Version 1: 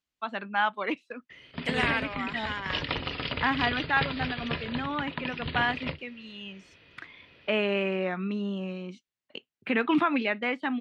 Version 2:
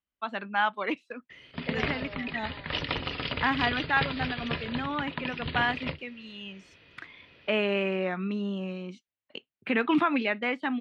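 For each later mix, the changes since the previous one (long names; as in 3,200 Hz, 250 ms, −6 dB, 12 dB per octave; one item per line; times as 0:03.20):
second voice: add resonant band-pass 560 Hz, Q 4.3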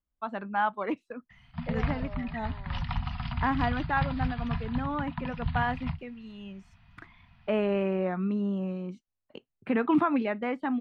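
background: add Chebyshev band-stop filter 240–690 Hz, order 5
master: remove meter weighting curve D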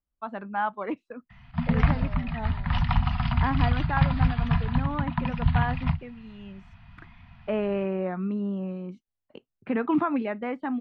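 background +8.5 dB
master: add low-pass filter 2,900 Hz 6 dB per octave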